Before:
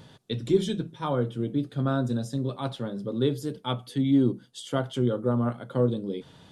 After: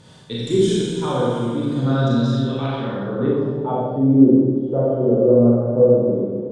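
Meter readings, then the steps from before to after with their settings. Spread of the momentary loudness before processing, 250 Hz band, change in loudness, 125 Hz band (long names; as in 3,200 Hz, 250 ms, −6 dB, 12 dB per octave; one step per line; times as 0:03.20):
9 LU, +9.5 dB, +10.0 dB, +7.5 dB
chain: four-comb reverb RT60 1.9 s, combs from 30 ms, DRR −7 dB
low-pass filter sweep 8,400 Hz → 530 Hz, 0:01.71–0:04.07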